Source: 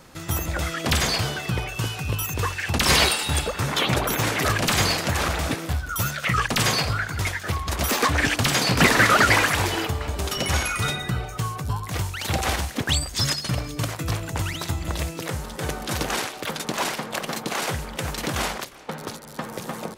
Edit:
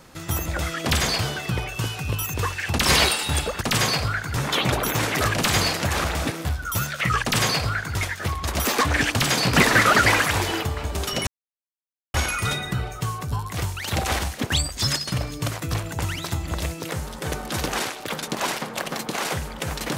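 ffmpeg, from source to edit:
-filter_complex "[0:a]asplit=4[s0][s1][s2][s3];[s0]atrim=end=3.612[s4];[s1]atrim=start=6.458:end=7.222[s5];[s2]atrim=start=3.608:end=10.51,asetpts=PTS-STARTPTS,afade=t=out:st=6.898:d=0.004:c=hsin,apad=pad_dur=0.87[s6];[s3]atrim=start=10.51,asetpts=PTS-STARTPTS,afade=t=in:d=0.004:c=hsin[s7];[s4][s5]acrossfade=d=0.004:c1=hsin:c2=hsin[s8];[s6][s7]concat=n=2:v=0:a=1[s9];[s8][s9]acrossfade=d=0.004:c1=hsin:c2=hsin"

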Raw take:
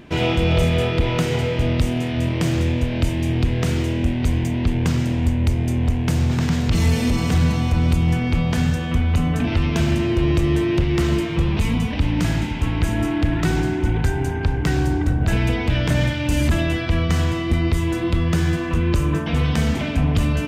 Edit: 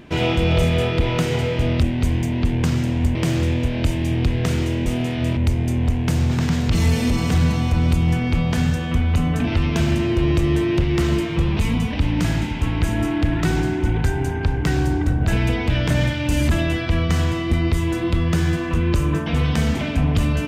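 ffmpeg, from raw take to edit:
-filter_complex "[0:a]asplit=5[s0][s1][s2][s3][s4];[s0]atrim=end=1.822[s5];[s1]atrim=start=4.038:end=5.372[s6];[s2]atrim=start=2.328:end=4.042[s7];[s3]atrim=start=1.818:end=2.332[s8];[s4]atrim=start=5.368[s9];[s5][s6]acrossfade=d=0.004:c1=hsin:c2=hsin[s10];[s10][s7]acrossfade=d=0.004:c1=hsin:c2=hsin[s11];[s11][s8]acrossfade=d=0.004:c1=hsin:c2=hsin[s12];[s12][s9]acrossfade=d=0.004:c1=hsin:c2=hsin"

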